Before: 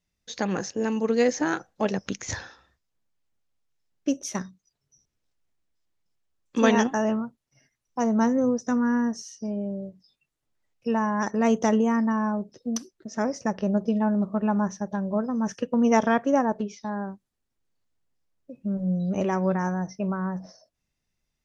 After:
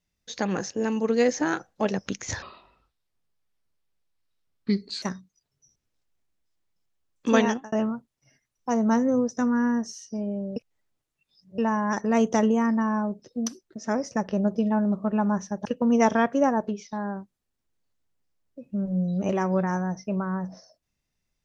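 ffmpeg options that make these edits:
-filter_complex "[0:a]asplit=7[a][b][c][d][e][f][g];[a]atrim=end=2.424[h];[b]atrim=start=2.42:end=4.32,asetpts=PTS-STARTPTS,asetrate=32193,aresample=44100[i];[c]atrim=start=4.316:end=7.02,asetpts=PTS-STARTPTS,afade=t=out:st=2.354:d=0.35[j];[d]atrim=start=7.02:end=9.862,asetpts=PTS-STARTPTS,afade=t=in:d=0.004:c=hsin[k];[e]atrim=start=9.858:end=10.882,asetpts=PTS-STARTPTS,areverse[l];[f]atrim=start=10.878:end=14.952[m];[g]atrim=start=15.568[n];[h][i]acrossfade=d=0.004:c1=hsin:c2=hsin[o];[j][k]concat=n=2:v=0:a=1[p];[o][p]acrossfade=d=0.004:c1=hsin:c2=hsin[q];[q][l]acrossfade=d=0.004:c1=hsin:c2=hsin[r];[r][m]acrossfade=d=0.004:c1=hsin:c2=hsin[s];[s][n]acrossfade=d=0.004:c1=hsin:c2=hsin"

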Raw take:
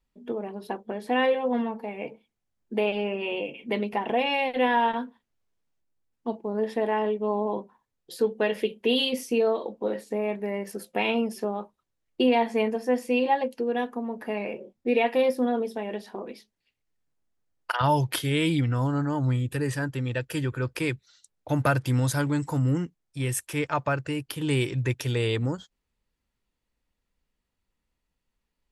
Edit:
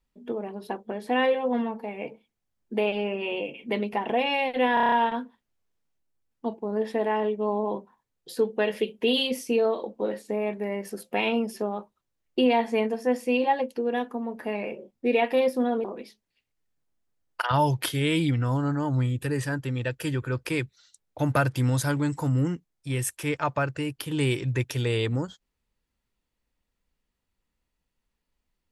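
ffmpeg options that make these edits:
-filter_complex "[0:a]asplit=8[a][b][c][d][e][f][g][h];[a]atrim=end=4.772[i];[b]atrim=start=4.738:end=4.772[j];[c]atrim=start=4.738:end=4.772[k];[d]atrim=start=4.738:end=4.772[l];[e]atrim=start=4.738:end=4.772[m];[f]atrim=start=4.738:end=4.772[n];[g]atrim=start=4.738:end=15.662[o];[h]atrim=start=16.138[p];[i][j]acrossfade=d=0.004:c1=hsin:c2=hsin[q];[q][k]acrossfade=d=0.004:c1=hsin:c2=hsin[r];[r][l]acrossfade=d=0.004:c1=hsin:c2=hsin[s];[s][m]acrossfade=d=0.004:c1=hsin:c2=hsin[t];[t][n]acrossfade=d=0.004:c1=hsin:c2=hsin[u];[u][o]acrossfade=d=0.004:c1=hsin:c2=hsin[v];[v][p]acrossfade=d=0.004:c1=hsin:c2=hsin"

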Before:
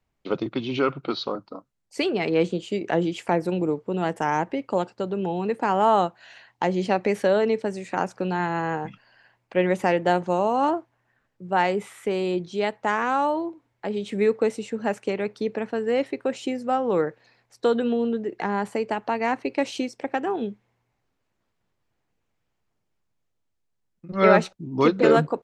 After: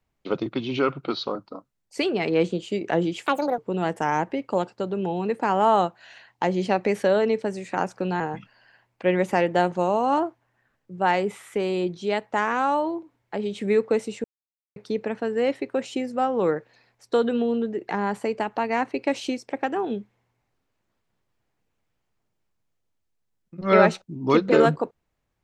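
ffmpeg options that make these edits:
-filter_complex "[0:a]asplit=6[a][b][c][d][e][f];[a]atrim=end=3.264[g];[b]atrim=start=3.26:end=3.78,asetpts=PTS-STARTPTS,asetrate=71442,aresample=44100[h];[c]atrim=start=3.776:end=8.402[i];[d]atrim=start=8.708:end=14.75,asetpts=PTS-STARTPTS,afade=t=out:st=6.038:d=0.004:c=hsin[j];[e]atrim=start=14.75:end=15.27,asetpts=PTS-STARTPTS,volume=0[k];[f]atrim=start=15.27,asetpts=PTS-STARTPTS,afade=t=in:d=0.004:c=hsin[l];[g][h]acrossfade=d=0.004:c1=hsin:c2=hsin[m];[m][i]acrossfade=d=0.004:c1=hsin:c2=hsin[n];[j][k][l]concat=n=3:v=0:a=1[o];[n][o]acrossfade=d=0.004:c1=hsin:c2=hsin"

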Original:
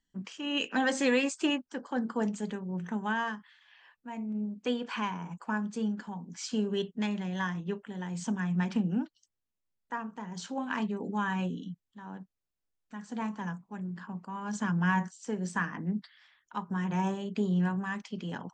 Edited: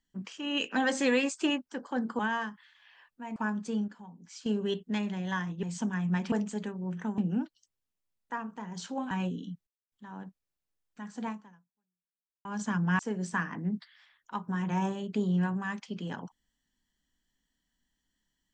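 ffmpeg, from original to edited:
-filter_complex "[0:a]asplit=12[a][b][c][d][e][f][g][h][i][j][k][l];[a]atrim=end=2.192[m];[b]atrim=start=3.048:end=4.222[n];[c]atrim=start=5.438:end=5.962[o];[d]atrim=start=5.958:end=6.542,asetpts=PTS-STARTPTS,volume=-8.5dB[p];[e]atrim=start=6.538:end=7.712[q];[f]atrim=start=8.088:end=8.782[r];[g]atrim=start=2.188:end=3.052[s];[h]atrim=start=8.778:end=10.712[t];[i]atrim=start=11.298:end=11.86,asetpts=PTS-STARTPTS,afade=t=out:st=0.558:d=0.004:c=hsin,apad=pad_dur=0.25[u];[j]atrim=start=11.86:end=14.39,asetpts=PTS-STARTPTS,afade=t=in:d=0.004:c=hsin,afade=t=out:st=1.35:d=1.18:c=exp[v];[k]atrim=start=14.39:end=14.932,asetpts=PTS-STARTPTS,afade=t=in:d=0.004:c=hsin[w];[l]atrim=start=15.208[x];[m][n]acrossfade=d=0.004:c1=hsin:c2=hsin[y];[y][o]acrossfade=d=0.004:c1=hsin:c2=hsin[z];[z][p]acrossfade=d=0.004:c1=hsin:c2=hsin[aa];[aa][q]acrossfade=d=0.004:c1=hsin:c2=hsin[ab];[ab][r]acrossfade=d=0.004:c1=hsin:c2=hsin[ac];[ac][s]acrossfade=d=0.004:c1=hsin:c2=hsin[ad];[ad][t]acrossfade=d=0.004:c1=hsin:c2=hsin[ae];[u][v][w]concat=n=3:v=0:a=1[af];[ae][af]acrossfade=d=0.004:c1=hsin:c2=hsin[ag];[ag][x]acrossfade=d=0.004:c1=hsin:c2=hsin"

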